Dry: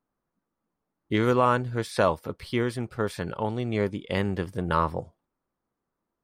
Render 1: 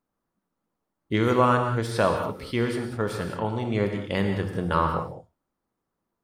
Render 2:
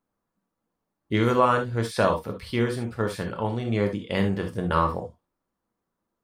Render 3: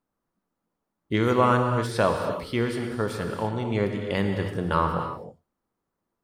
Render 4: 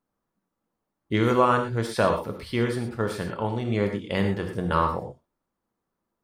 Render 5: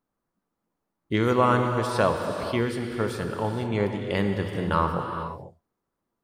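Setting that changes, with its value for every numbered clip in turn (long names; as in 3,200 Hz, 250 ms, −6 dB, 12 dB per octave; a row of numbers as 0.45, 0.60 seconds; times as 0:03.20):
reverb whose tail is shaped and stops, gate: 230, 90, 340, 140, 520 milliseconds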